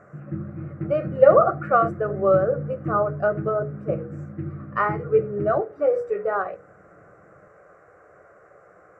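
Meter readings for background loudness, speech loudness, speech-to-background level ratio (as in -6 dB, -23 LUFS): -33.5 LUFS, -22.5 LUFS, 11.0 dB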